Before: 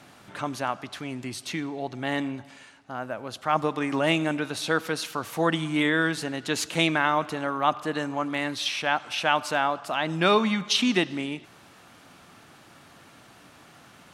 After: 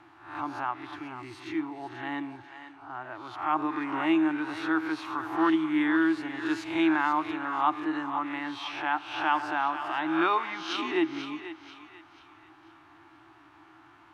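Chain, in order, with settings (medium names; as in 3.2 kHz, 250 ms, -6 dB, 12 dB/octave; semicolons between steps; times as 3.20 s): reverse spectral sustain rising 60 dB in 0.55 s; FFT filter 120 Hz 0 dB, 220 Hz -20 dB, 320 Hz +14 dB, 490 Hz -15 dB, 870 Hz +8 dB, 2.5 kHz -1 dB, 8.7 kHz -17 dB; thinning echo 488 ms, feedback 38%, high-pass 580 Hz, level -10 dB; trim -8.5 dB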